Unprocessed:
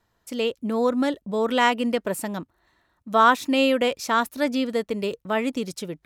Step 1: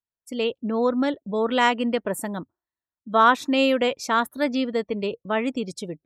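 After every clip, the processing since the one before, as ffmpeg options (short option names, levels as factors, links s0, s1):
-af "afftdn=nr=32:nf=-43"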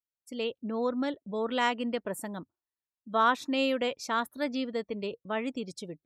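-af "equalizer=f=4500:w=1.5:g=2.5,volume=0.398"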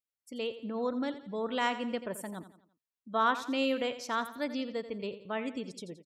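-af "aecho=1:1:86|172|258|344:0.224|0.0985|0.0433|0.0191,volume=0.708"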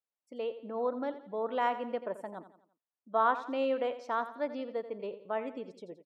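-af "bandpass=f=700:t=q:w=1.1:csg=0,volume=1.5"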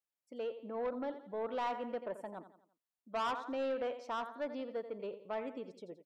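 -af "asoftclip=type=tanh:threshold=0.0398,volume=0.75"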